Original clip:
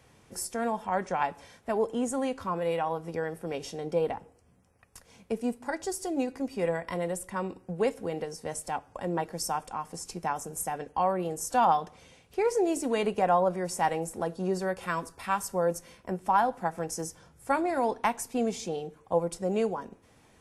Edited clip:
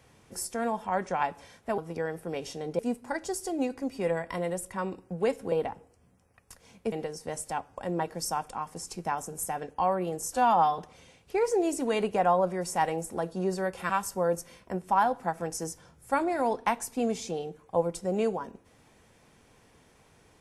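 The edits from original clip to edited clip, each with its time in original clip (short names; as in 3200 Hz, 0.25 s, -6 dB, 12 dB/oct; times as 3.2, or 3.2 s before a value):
1.78–2.96 cut
3.97–5.37 move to 8.1
11.53–11.82 stretch 1.5×
14.93–15.27 cut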